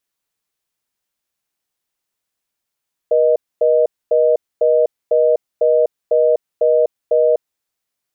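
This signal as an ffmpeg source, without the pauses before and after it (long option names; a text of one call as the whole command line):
ffmpeg -f lavfi -i "aevalsrc='0.224*(sin(2*PI*480*t)+sin(2*PI*620*t))*clip(min(mod(t,0.5),0.25-mod(t,0.5))/0.005,0,1)':duration=4.32:sample_rate=44100" out.wav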